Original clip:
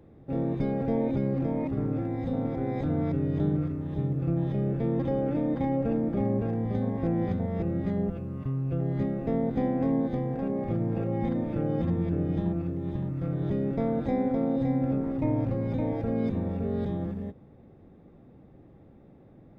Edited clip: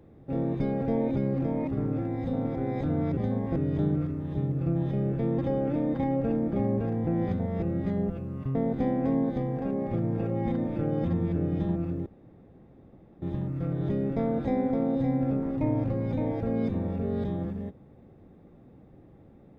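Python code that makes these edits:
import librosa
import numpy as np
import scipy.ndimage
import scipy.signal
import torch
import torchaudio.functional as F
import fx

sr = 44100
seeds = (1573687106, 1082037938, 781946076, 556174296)

y = fx.edit(x, sr, fx.move(start_s=6.68, length_s=0.39, to_s=3.17),
    fx.cut(start_s=8.55, length_s=0.77),
    fx.insert_room_tone(at_s=12.83, length_s=1.16), tone=tone)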